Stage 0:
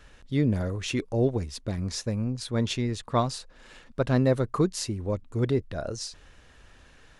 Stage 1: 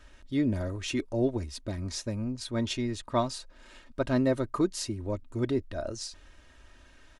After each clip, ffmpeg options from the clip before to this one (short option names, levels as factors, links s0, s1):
-af "aecho=1:1:3.2:0.57,volume=0.668"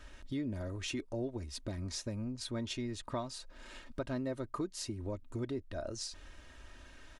-af "acompressor=threshold=0.01:ratio=3,volume=1.19"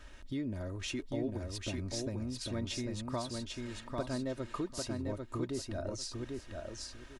-af "aecho=1:1:796|1592|2388:0.668|0.134|0.0267"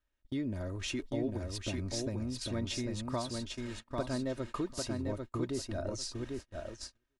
-af "agate=range=0.0224:threshold=0.00708:ratio=16:detection=peak,volume=1.19"